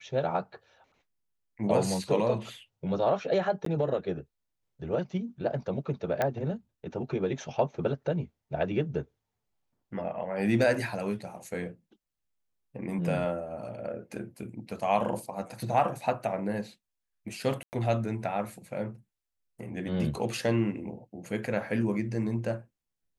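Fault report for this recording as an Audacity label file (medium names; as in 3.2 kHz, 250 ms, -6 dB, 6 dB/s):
3.650000	3.660000	dropout 13 ms
6.220000	6.220000	pop -14 dBFS
17.630000	17.730000	dropout 99 ms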